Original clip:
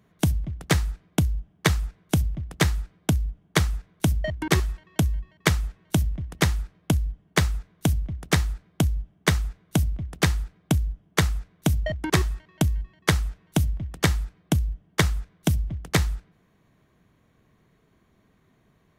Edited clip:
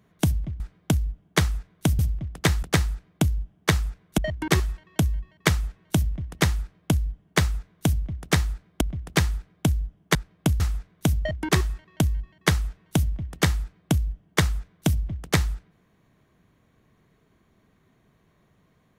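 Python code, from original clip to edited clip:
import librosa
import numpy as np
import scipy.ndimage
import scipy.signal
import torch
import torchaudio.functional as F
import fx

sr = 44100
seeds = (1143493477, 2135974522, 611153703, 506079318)

y = fx.edit(x, sr, fx.swap(start_s=0.6, length_s=1.55, other_s=2.79, other_length_s=1.39),
    fx.duplicate(start_s=6.59, length_s=0.45, to_s=11.21),
    fx.cut(start_s=8.81, length_s=1.06), tone=tone)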